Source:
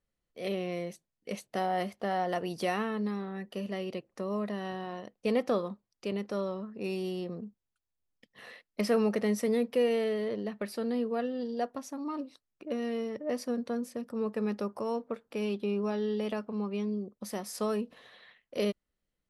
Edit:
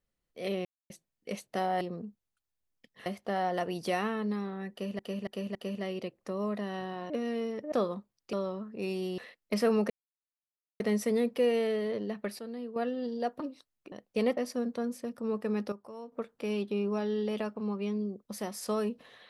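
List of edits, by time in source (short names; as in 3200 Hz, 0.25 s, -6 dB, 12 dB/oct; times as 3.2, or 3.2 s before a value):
0.65–0.9 mute
3.46–3.74 loop, 4 plays
5.01–5.46 swap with 12.67–13.29
6.07–6.35 cut
7.2–8.45 move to 1.81
9.17 insert silence 0.90 s
10.76–11.13 gain -8.5 dB
11.77–12.15 cut
14.64–15.04 gain -11.5 dB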